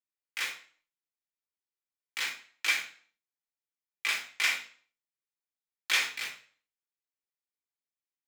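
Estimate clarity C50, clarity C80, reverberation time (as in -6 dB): 9.0 dB, 13.0 dB, 0.45 s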